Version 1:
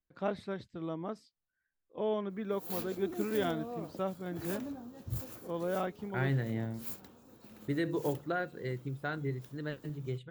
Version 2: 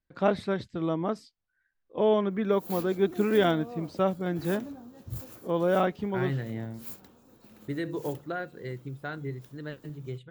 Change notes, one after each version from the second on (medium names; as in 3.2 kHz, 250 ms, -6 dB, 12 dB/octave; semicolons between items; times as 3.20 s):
first voice +9.5 dB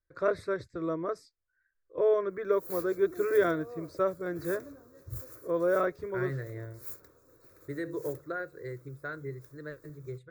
master: add static phaser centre 810 Hz, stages 6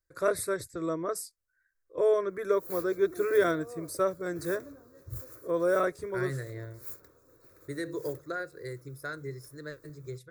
first voice: remove distance through air 210 m; second voice: remove boxcar filter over 8 samples